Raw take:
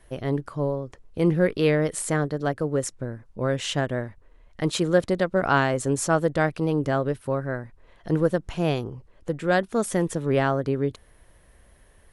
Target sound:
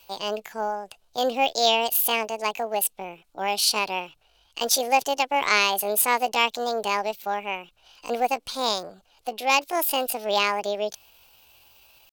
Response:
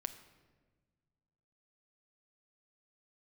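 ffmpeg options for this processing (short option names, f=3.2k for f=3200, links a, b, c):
-filter_complex "[0:a]asetrate=66075,aresample=44100,atempo=0.66742,aexciter=amount=15.2:drive=5.6:freq=2.9k,acrossover=split=400 2400:gain=0.158 1 0.126[a][b][c];[a][b][c]amix=inputs=3:normalize=0"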